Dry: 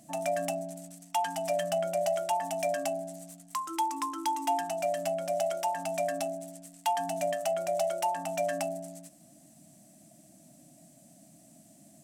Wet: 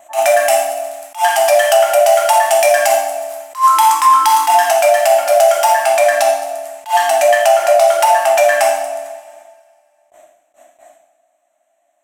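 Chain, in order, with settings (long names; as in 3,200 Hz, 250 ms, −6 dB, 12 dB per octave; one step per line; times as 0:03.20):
adaptive Wiener filter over 9 samples
high-pass filter 710 Hz 24 dB per octave
high-shelf EQ 7,800 Hz +9.5 dB, from 0:05.73 +4 dB
bucket-brigade delay 142 ms, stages 1,024, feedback 51%, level −15 dB
noise gate with hold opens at −57 dBFS
high-shelf EQ 2,400 Hz −8.5 dB
coupled-rooms reverb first 0.76 s, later 2.1 s, DRR −2.5 dB
boost into a limiter +25 dB
level that may rise only so fast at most 260 dB per second
level −1 dB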